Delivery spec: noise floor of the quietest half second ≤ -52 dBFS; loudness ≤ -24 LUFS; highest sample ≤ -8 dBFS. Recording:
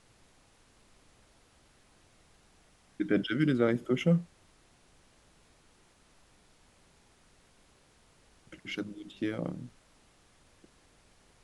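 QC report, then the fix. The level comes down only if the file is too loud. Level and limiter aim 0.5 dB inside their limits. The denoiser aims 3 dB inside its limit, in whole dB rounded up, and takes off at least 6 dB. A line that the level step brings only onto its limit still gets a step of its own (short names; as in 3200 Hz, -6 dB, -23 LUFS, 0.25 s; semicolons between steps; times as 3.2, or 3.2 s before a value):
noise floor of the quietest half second -64 dBFS: OK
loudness -31.0 LUFS: OK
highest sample -14.0 dBFS: OK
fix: none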